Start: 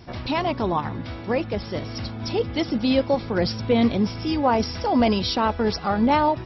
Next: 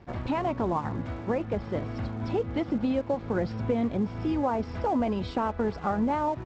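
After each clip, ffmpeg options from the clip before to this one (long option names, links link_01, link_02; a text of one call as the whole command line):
ffmpeg -i in.wav -af "acompressor=threshold=-23dB:ratio=6,lowpass=1700,aresample=16000,aeval=exprs='sgn(val(0))*max(abs(val(0))-0.00335,0)':channel_layout=same,aresample=44100" out.wav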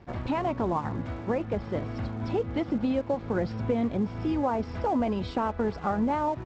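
ffmpeg -i in.wav -af anull out.wav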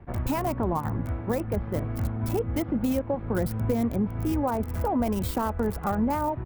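ffmpeg -i in.wav -filter_complex "[0:a]lowshelf=frequency=110:gain=11.5,acrossover=split=170|2300[link_01][link_02][link_03];[link_03]acrusher=bits=5:dc=4:mix=0:aa=0.000001[link_04];[link_01][link_02][link_04]amix=inputs=3:normalize=0,aemphasis=mode=production:type=75fm" out.wav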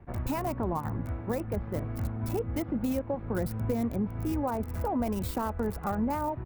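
ffmpeg -i in.wav -af "bandreject=frequency=3200:width=21,volume=-4dB" out.wav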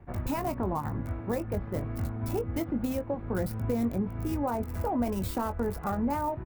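ffmpeg -i in.wav -filter_complex "[0:a]asplit=2[link_01][link_02];[link_02]adelay=21,volume=-10dB[link_03];[link_01][link_03]amix=inputs=2:normalize=0" out.wav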